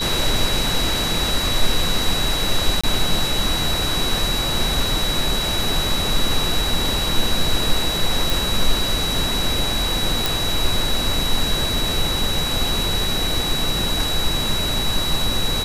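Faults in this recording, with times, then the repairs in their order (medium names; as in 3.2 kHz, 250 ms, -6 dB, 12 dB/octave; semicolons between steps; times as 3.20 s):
whine 3.9 kHz -23 dBFS
2.81–2.83 s: dropout 25 ms
8.30 s: pop
10.26 s: pop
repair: de-click; band-stop 3.9 kHz, Q 30; interpolate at 2.81 s, 25 ms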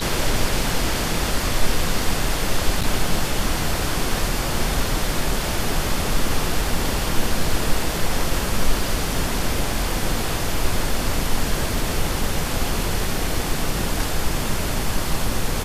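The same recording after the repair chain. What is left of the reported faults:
nothing left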